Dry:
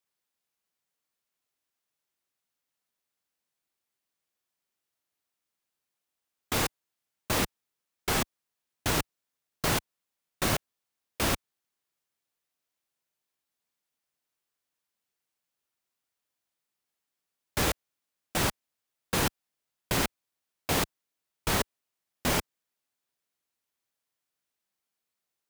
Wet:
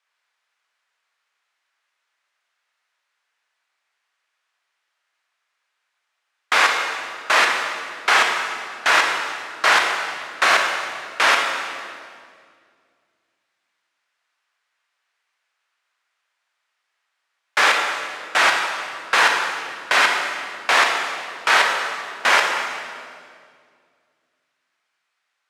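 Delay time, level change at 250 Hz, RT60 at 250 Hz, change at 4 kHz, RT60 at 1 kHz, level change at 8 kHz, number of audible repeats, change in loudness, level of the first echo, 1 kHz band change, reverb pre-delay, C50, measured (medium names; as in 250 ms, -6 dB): no echo, -4.5 dB, 2.6 s, +12.5 dB, 1.9 s, +5.0 dB, no echo, +11.5 dB, no echo, +16.0 dB, 24 ms, 3.0 dB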